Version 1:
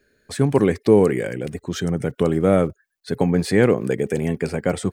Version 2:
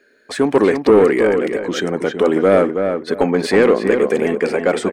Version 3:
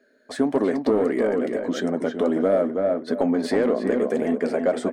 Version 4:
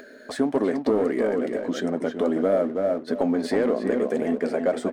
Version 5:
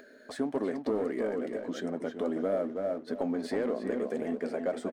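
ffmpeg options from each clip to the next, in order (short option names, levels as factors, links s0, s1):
-filter_complex "[0:a]lowshelf=f=180:t=q:w=1.5:g=-9,asplit=2[s0][s1];[s1]highpass=f=720:p=1,volume=7.08,asoftclip=type=tanh:threshold=0.794[s2];[s0][s2]amix=inputs=2:normalize=0,lowpass=f=2200:p=1,volume=0.501,asplit=2[s3][s4];[s4]adelay=324,lowpass=f=2700:p=1,volume=0.501,asplit=2[s5][s6];[s6]adelay=324,lowpass=f=2700:p=1,volume=0.24,asplit=2[s7][s8];[s8]adelay=324,lowpass=f=2700:p=1,volume=0.24[s9];[s3][s5][s7][s9]amix=inputs=4:normalize=0"
-af "equalizer=f=250:t=o:w=0.33:g=11,equalizer=f=630:t=o:w=0.33:g=12,equalizer=f=2500:t=o:w=0.33:g=-7,acompressor=threshold=0.316:ratio=2.5,flanger=delay=4:depth=5.5:regen=-66:speed=1.6:shape=triangular,volume=0.631"
-filter_complex "[0:a]asplit=2[s0][s1];[s1]aeval=exprs='sgn(val(0))*max(abs(val(0))-0.00841,0)':c=same,volume=0.631[s2];[s0][s2]amix=inputs=2:normalize=0,acompressor=mode=upward:threshold=0.0708:ratio=2.5,volume=0.531"
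-af "aecho=1:1:315|630|945:0.0794|0.035|0.0154,volume=0.376"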